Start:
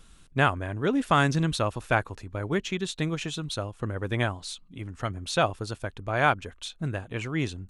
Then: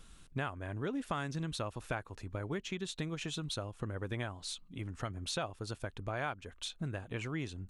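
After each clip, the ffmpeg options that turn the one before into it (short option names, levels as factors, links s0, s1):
-af "acompressor=threshold=0.0224:ratio=4,volume=0.75"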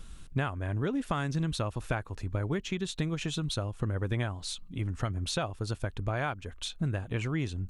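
-af "lowshelf=f=160:g=8,volume=1.58"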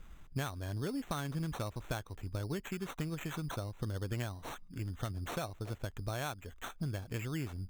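-af "acrusher=samples=9:mix=1:aa=0.000001,volume=0.473"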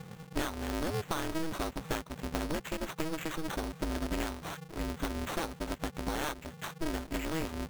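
-af "aeval=exprs='val(0)*sgn(sin(2*PI*160*n/s))':c=same,volume=1.5"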